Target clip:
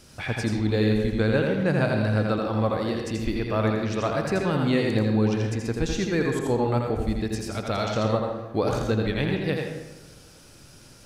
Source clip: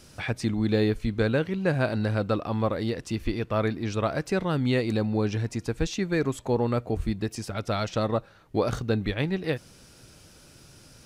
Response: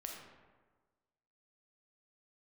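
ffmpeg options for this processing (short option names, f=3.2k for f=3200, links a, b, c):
-filter_complex "[0:a]asplit=2[a][b];[1:a]atrim=start_sample=2205,asetrate=57330,aresample=44100,adelay=83[c];[b][c]afir=irnorm=-1:irlink=0,volume=3.5dB[d];[a][d]amix=inputs=2:normalize=0"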